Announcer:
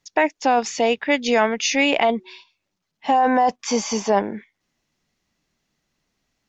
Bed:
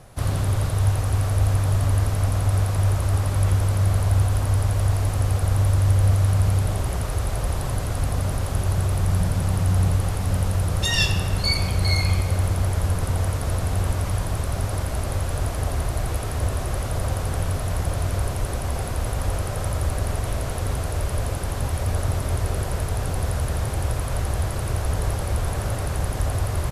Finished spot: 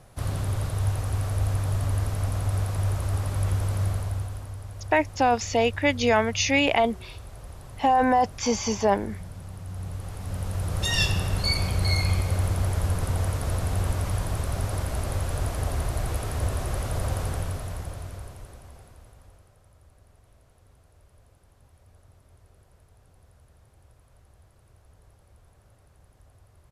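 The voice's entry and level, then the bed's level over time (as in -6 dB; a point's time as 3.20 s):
4.75 s, -3.0 dB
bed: 3.84 s -5.5 dB
4.57 s -17.5 dB
9.63 s -17.5 dB
10.92 s -3 dB
17.24 s -3 dB
19.62 s -32.5 dB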